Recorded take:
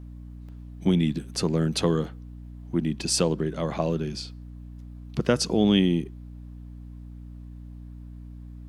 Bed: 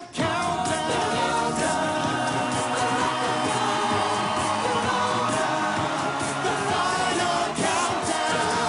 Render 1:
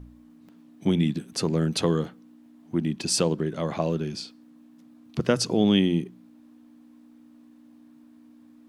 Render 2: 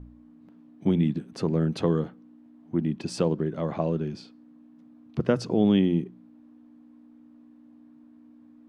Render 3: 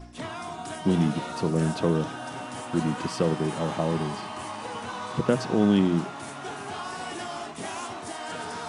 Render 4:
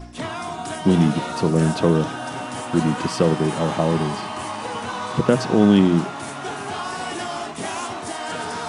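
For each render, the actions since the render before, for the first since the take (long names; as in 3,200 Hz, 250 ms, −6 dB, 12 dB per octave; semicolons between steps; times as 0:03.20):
hum removal 60 Hz, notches 3
low-pass filter 1,200 Hz 6 dB per octave
mix in bed −11.5 dB
level +6.5 dB; brickwall limiter −3 dBFS, peak gain reduction 1.5 dB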